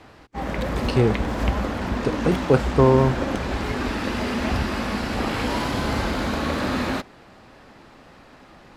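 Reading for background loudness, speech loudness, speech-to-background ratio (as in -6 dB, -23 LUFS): -25.5 LUFS, -21.5 LUFS, 4.0 dB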